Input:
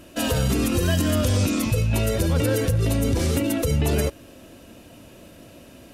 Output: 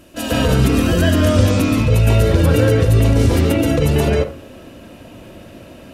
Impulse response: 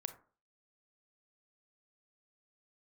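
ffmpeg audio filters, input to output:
-filter_complex "[0:a]asplit=2[a][b];[1:a]atrim=start_sample=2205,lowpass=3.4k,adelay=142[c];[b][c]afir=irnorm=-1:irlink=0,volume=9.5dB[d];[a][d]amix=inputs=2:normalize=0"

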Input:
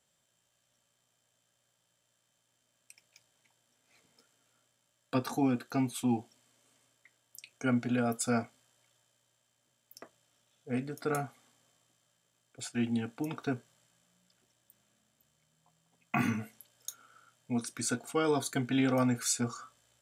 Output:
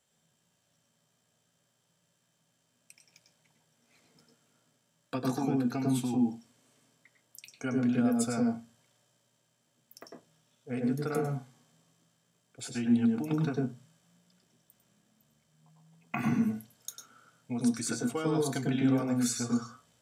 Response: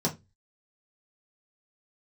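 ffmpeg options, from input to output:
-filter_complex "[0:a]acompressor=threshold=-30dB:ratio=6,asplit=2[a][b];[1:a]atrim=start_sample=2205,adelay=98[c];[b][c]afir=irnorm=-1:irlink=0,volume=-11dB[d];[a][d]amix=inputs=2:normalize=0"

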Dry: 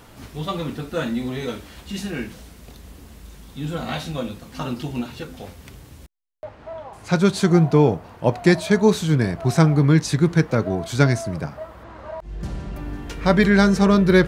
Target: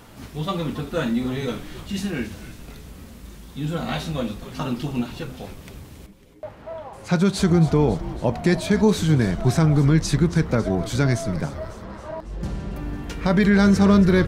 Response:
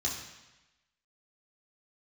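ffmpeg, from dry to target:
-filter_complex "[0:a]equalizer=f=200:t=o:w=0.77:g=3,alimiter=limit=-8.5dB:level=0:latency=1:release=78,asplit=8[a][b][c][d][e][f][g][h];[b]adelay=275,afreqshift=-110,volume=-14.5dB[i];[c]adelay=550,afreqshift=-220,volume=-18.5dB[j];[d]adelay=825,afreqshift=-330,volume=-22.5dB[k];[e]adelay=1100,afreqshift=-440,volume=-26.5dB[l];[f]adelay=1375,afreqshift=-550,volume=-30.6dB[m];[g]adelay=1650,afreqshift=-660,volume=-34.6dB[n];[h]adelay=1925,afreqshift=-770,volume=-38.6dB[o];[a][i][j][k][l][m][n][o]amix=inputs=8:normalize=0"

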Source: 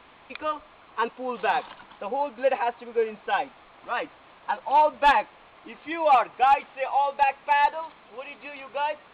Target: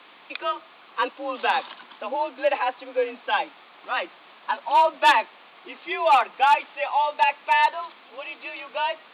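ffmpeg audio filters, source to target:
-af "highpass=f=130:w=0.5412,highpass=f=130:w=1.3066,afreqshift=43,highshelf=f=2.8k:g=11.5"

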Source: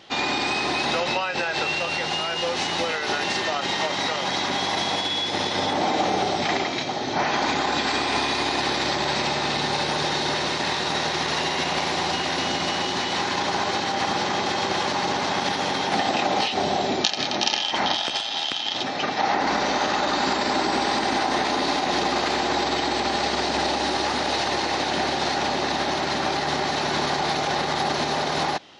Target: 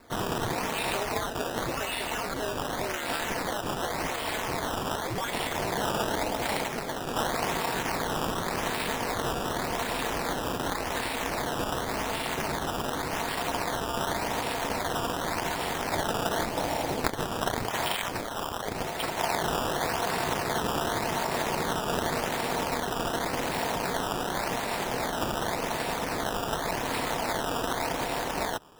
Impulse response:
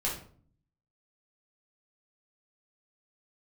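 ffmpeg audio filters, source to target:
-af "aeval=exprs='val(0)*sin(2*PI*110*n/s)':c=same,acrusher=samples=14:mix=1:aa=0.000001:lfo=1:lforange=14:lforate=0.88,volume=-3dB"

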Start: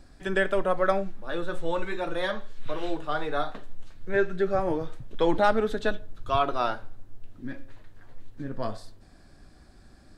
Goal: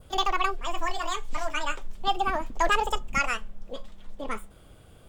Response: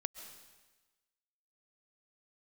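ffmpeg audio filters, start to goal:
-af "adynamicequalizer=threshold=0.0126:dfrequency=1300:dqfactor=0.78:tfrequency=1300:tqfactor=0.78:attack=5:release=100:ratio=0.375:range=2.5:mode=cutabove:tftype=bell,asetrate=88200,aresample=44100"

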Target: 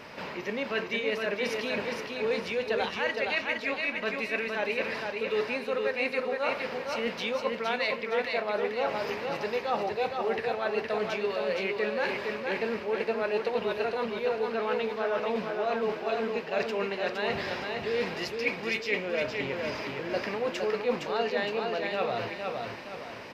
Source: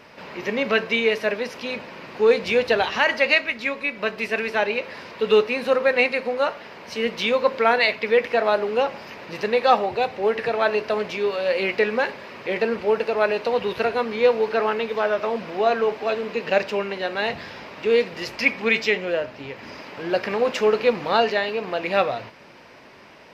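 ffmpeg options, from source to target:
-af "areverse,acompressor=threshold=-32dB:ratio=4,areverse,aecho=1:1:464|928|1392|1856|2320:0.631|0.246|0.096|0.0374|0.0146,volume=2dB"

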